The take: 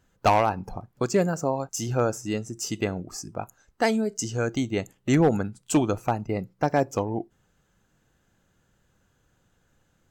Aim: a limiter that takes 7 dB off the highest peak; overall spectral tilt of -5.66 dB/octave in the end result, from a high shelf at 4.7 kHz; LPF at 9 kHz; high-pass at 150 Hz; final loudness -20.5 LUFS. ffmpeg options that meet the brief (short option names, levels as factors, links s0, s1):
-af "highpass=150,lowpass=9000,highshelf=f=4700:g=-7,volume=2.99,alimiter=limit=0.501:level=0:latency=1"